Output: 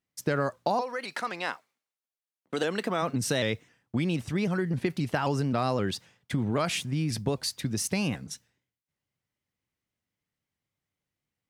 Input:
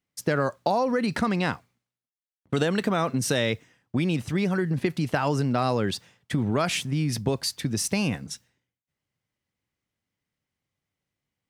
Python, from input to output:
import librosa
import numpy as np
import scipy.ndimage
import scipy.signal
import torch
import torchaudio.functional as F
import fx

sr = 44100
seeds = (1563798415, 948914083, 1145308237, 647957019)

y = fx.highpass(x, sr, hz=fx.line((0.8, 730.0), (3.01, 230.0)), slope=12, at=(0.8, 3.01), fade=0.02)
y = fx.vibrato_shape(y, sr, shape='saw_up', rate_hz=3.8, depth_cents=100.0)
y = F.gain(torch.from_numpy(y), -3.0).numpy()